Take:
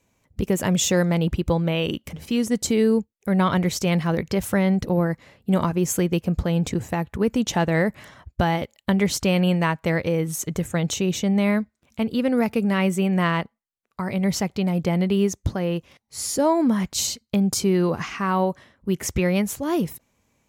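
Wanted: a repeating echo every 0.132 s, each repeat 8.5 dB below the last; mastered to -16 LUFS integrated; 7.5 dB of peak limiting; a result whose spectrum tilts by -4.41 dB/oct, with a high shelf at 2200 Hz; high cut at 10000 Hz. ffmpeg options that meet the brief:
-af "lowpass=10k,highshelf=f=2.2k:g=7.5,alimiter=limit=-12.5dB:level=0:latency=1,aecho=1:1:132|264|396|528:0.376|0.143|0.0543|0.0206,volume=7dB"

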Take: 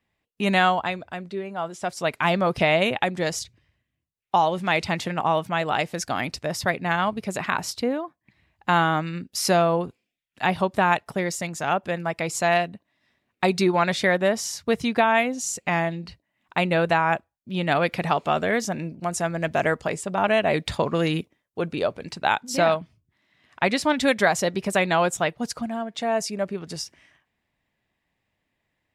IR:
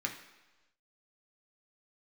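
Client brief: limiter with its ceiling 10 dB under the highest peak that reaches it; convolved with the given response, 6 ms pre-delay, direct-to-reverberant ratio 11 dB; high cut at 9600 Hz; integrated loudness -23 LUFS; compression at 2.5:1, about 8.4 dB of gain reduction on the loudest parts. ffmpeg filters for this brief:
-filter_complex "[0:a]lowpass=9.6k,acompressor=threshold=-28dB:ratio=2.5,alimiter=limit=-20dB:level=0:latency=1,asplit=2[a][b];[1:a]atrim=start_sample=2205,adelay=6[c];[b][c]afir=irnorm=-1:irlink=0,volume=-14.5dB[d];[a][d]amix=inputs=2:normalize=0,volume=8.5dB"

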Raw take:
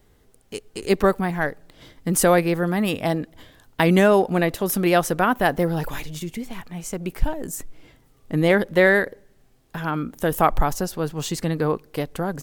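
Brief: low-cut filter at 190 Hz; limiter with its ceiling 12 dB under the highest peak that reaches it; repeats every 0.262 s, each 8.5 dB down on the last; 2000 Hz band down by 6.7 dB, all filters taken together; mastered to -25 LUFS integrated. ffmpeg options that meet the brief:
-af "highpass=190,equalizer=f=2k:t=o:g=-8.5,alimiter=limit=-17dB:level=0:latency=1,aecho=1:1:262|524|786|1048:0.376|0.143|0.0543|0.0206,volume=3.5dB"

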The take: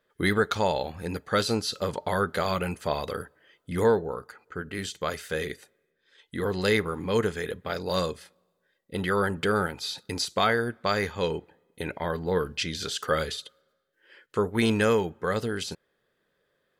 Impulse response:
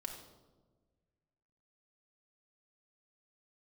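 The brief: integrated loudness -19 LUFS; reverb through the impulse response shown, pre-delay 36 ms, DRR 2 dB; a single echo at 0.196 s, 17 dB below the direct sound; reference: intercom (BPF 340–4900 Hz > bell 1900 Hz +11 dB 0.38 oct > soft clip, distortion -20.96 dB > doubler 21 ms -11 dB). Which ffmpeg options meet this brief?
-filter_complex "[0:a]aecho=1:1:196:0.141,asplit=2[a][b];[1:a]atrim=start_sample=2205,adelay=36[c];[b][c]afir=irnorm=-1:irlink=0,volume=0dB[d];[a][d]amix=inputs=2:normalize=0,highpass=340,lowpass=4.9k,equalizer=f=1.9k:t=o:w=0.38:g=11,asoftclip=threshold=-10.5dB,asplit=2[e][f];[f]adelay=21,volume=-11dB[g];[e][g]amix=inputs=2:normalize=0,volume=7dB"

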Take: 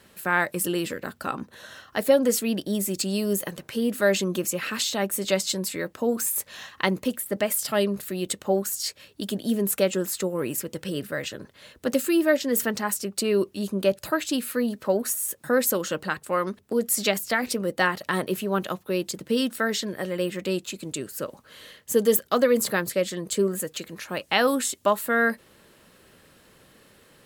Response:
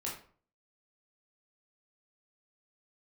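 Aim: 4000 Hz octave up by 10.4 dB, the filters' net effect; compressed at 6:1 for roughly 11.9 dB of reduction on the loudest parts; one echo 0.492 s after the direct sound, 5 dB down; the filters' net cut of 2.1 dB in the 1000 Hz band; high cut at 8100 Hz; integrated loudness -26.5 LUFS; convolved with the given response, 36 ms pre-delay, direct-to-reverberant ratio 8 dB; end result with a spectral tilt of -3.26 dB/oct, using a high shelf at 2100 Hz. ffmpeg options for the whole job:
-filter_complex "[0:a]lowpass=8.1k,equalizer=f=1k:t=o:g=-5.5,highshelf=f=2.1k:g=8,equalizer=f=4k:t=o:g=6,acompressor=threshold=-27dB:ratio=6,aecho=1:1:492:0.562,asplit=2[a][b];[1:a]atrim=start_sample=2205,adelay=36[c];[b][c]afir=irnorm=-1:irlink=0,volume=-9.5dB[d];[a][d]amix=inputs=2:normalize=0,volume=2.5dB"

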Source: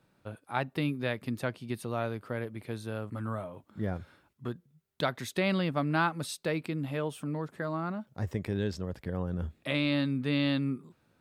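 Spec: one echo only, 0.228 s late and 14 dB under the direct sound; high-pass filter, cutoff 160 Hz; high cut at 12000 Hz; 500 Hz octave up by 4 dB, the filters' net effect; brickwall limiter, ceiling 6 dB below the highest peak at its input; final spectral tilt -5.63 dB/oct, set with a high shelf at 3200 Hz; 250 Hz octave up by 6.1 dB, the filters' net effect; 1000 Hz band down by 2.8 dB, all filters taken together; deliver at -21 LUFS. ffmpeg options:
-af "highpass=160,lowpass=12k,equalizer=f=250:t=o:g=7.5,equalizer=f=500:t=o:g=4.5,equalizer=f=1k:t=o:g=-6.5,highshelf=f=3.2k:g=4.5,alimiter=limit=-19dB:level=0:latency=1,aecho=1:1:228:0.2,volume=10dB"

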